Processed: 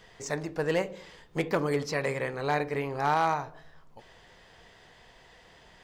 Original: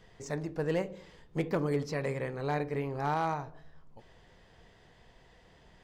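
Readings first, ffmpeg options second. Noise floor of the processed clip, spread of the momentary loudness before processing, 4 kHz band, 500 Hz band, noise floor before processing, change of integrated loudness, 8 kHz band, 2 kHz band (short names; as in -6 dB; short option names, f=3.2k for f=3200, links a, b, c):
-56 dBFS, 9 LU, +8.0 dB, +3.5 dB, -60 dBFS, +4.0 dB, +8.0 dB, +7.5 dB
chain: -af "lowshelf=f=460:g=-9.5,volume=8dB"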